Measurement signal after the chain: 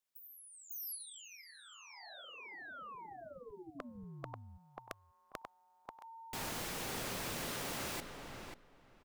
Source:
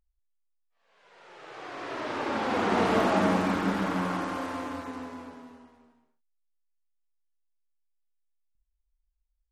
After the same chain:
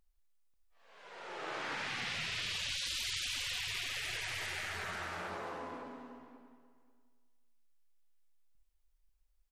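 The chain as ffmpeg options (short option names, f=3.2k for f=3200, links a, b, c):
-filter_complex "[0:a]equalizer=f=62:w=0.86:g=-9,asplit=2[a][b];[b]adelay=538,lowpass=f=2.9k:p=1,volume=-6dB,asplit=2[c][d];[d]adelay=538,lowpass=f=2.9k:p=1,volume=0.17,asplit=2[e][f];[f]adelay=538,lowpass=f=2.9k:p=1,volume=0.17[g];[a][c][e][g]amix=inputs=4:normalize=0,afftfilt=real='re*lt(hypot(re,im),0.0282)':imag='im*lt(hypot(re,im),0.0282)':win_size=1024:overlap=0.75,volume=5.5dB"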